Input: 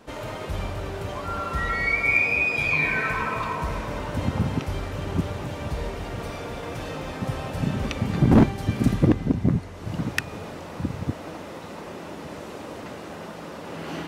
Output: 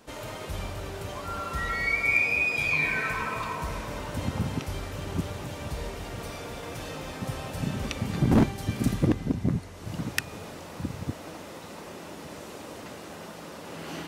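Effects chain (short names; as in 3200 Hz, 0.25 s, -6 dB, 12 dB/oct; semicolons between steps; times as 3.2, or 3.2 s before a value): high shelf 4200 Hz +9.5 dB; gain -5 dB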